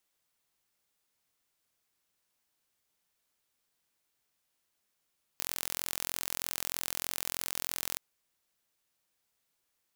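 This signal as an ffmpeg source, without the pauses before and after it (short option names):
-f lavfi -i "aevalsrc='0.447*eq(mod(n,1021),0)':d=2.57:s=44100"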